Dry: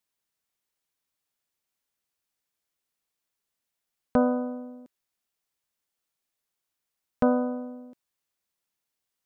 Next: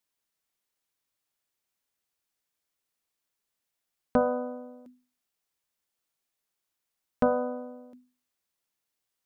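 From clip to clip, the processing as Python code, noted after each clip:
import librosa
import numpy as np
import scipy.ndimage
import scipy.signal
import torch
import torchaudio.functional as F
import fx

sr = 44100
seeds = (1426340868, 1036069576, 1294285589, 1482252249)

y = fx.hum_notches(x, sr, base_hz=50, count=5)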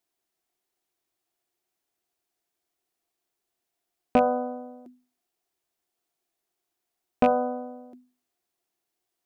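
y = fx.rattle_buzz(x, sr, strikes_db=-33.0, level_db=-21.0)
y = fx.small_body(y, sr, hz=(360.0, 700.0), ring_ms=40, db=13)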